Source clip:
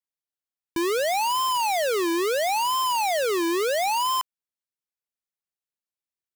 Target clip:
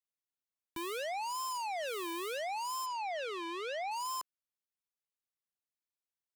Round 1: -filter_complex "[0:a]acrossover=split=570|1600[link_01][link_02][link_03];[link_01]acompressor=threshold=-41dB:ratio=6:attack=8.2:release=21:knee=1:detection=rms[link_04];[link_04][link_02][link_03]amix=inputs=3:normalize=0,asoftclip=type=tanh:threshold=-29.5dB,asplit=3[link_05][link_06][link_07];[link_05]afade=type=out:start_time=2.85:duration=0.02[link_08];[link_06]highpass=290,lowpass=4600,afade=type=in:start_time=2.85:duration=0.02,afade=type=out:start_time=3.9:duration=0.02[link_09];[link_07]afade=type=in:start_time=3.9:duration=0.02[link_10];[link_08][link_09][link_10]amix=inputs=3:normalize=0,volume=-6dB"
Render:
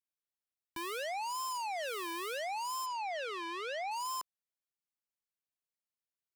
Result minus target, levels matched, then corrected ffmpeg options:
downward compressor: peak gain reduction +6 dB
-filter_complex "[0:a]acrossover=split=570|1600[link_01][link_02][link_03];[link_01]acompressor=threshold=-33.5dB:ratio=6:attack=8.2:release=21:knee=1:detection=rms[link_04];[link_04][link_02][link_03]amix=inputs=3:normalize=0,asoftclip=type=tanh:threshold=-29.5dB,asplit=3[link_05][link_06][link_07];[link_05]afade=type=out:start_time=2.85:duration=0.02[link_08];[link_06]highpass=290,lowpass=4600,afade=type=in:start_time=2.85:duration=0.02,afade=type=out:start_time=3.9:duration=0.02[link_09];[link_07]afade=type=in:start_time=3.9:duration=0.02[link_10];[link_08][link_09][link_10]amix=inputs=3:normalize=0,volume=-6dB"

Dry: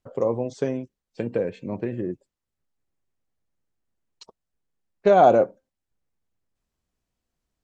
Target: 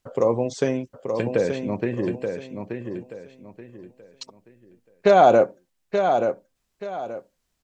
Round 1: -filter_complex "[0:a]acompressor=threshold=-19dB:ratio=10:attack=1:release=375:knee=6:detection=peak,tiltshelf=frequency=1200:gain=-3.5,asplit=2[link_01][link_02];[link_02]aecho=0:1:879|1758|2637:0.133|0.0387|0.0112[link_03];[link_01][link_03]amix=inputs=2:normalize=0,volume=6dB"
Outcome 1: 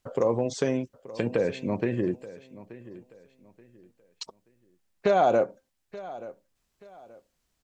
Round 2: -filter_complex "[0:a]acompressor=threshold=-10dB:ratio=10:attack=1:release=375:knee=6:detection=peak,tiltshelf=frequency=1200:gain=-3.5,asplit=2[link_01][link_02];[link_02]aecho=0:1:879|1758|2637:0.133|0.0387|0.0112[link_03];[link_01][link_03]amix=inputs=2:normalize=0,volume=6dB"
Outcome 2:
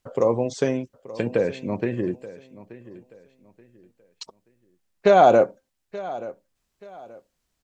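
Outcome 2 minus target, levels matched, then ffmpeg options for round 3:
echo-to-direct −11 dB
-filter_complex "[0:a]acompressor=threshold=-10dB:ratio=10:attack=1:release=375:knee=6:detection=peak,tiltshelf=frequency=1200:gain=-3.5,asplit=2[link_01][link_02];[link_02]aecho=0:1:879|1758|2637|3516:0.473|0.137|0.0398|0.0115[link_03];[link_01][link_03]amix=inputs=2:normalize=0,volume=6dB"

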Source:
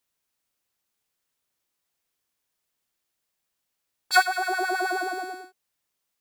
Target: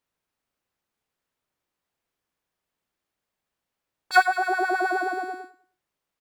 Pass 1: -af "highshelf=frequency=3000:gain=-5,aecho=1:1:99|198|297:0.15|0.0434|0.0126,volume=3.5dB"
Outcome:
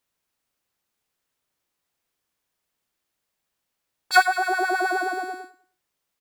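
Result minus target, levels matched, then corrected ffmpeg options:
8,000 Hz band +6.0 dB
-af "highshelf=frequency=3000:gain=-13,aecho=1:1:99|198|297:0.15|0.0434|0.0126,volume=3.5dB"

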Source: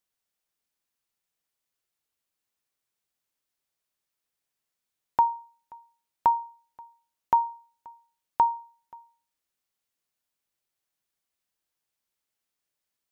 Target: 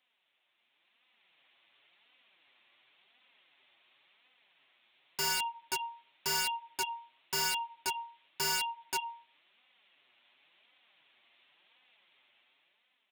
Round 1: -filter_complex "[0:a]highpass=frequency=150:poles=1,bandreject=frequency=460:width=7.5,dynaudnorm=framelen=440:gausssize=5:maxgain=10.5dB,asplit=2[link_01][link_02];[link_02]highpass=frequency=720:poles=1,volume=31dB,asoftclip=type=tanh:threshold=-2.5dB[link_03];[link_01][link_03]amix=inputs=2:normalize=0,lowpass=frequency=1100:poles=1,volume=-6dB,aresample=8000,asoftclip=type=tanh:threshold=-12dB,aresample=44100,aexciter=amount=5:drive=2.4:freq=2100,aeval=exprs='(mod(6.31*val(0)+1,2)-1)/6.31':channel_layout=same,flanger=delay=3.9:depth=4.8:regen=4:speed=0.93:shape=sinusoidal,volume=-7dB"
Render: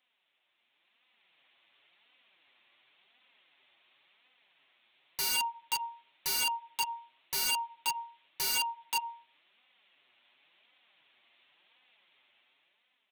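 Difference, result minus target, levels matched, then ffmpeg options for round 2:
soft clipping: distortion −8 dB
-filter_complex "[0:a]highpass=frequency=150:poles=1,bandreject=frequency=460:width=7.5,dynaudnorm=framelen=440:gausssize=5:maxgain=10.5dB,asplit=2[link_01][link_02];[link_02]highpass=frequency=720:poles=1,volume=31dB,asoftclip=type=tanh:threshold=-2.5dB[link_03];[link_01][link_03]amix=inputs=2:normalize=0,lowpass=frequency=1100:poles=1,volume=-6dB,aresample=8000,asoftclip=type=tanh:threshold=-22.5dB,aresample=44100,aexciter=amount=5:drive=2.4:freq=2100,aeval=exprs='(mod(6.31*val(0)+1,2)-1)/6.31':channel_layout=same,flanger=delay=3.9:depth=4.8:regen=4:speed=0.93:shape=sinusoidal,volume=-7dB"

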